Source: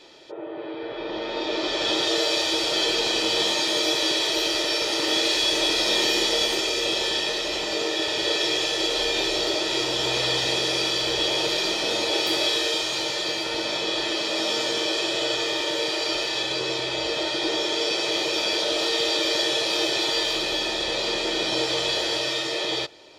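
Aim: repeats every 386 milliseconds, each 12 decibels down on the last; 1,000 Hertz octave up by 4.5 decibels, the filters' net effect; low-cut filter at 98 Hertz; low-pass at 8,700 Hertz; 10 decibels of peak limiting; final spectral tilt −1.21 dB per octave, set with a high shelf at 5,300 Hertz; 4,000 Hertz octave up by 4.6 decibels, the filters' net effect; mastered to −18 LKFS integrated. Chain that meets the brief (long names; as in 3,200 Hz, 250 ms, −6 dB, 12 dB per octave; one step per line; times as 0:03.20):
high-pass filter 98 Hz
low-pass filter 8,700 Hz
parametric band 1,000 Hz +5.5 dB
parametric band 4,000 Hz +9 dB
high-shelf EQ 5,300 Hz −9 dB
brickwall limiter −16 dBFS
repeating echo 386 ms, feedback 25%, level −12 dB
level +4.5 dB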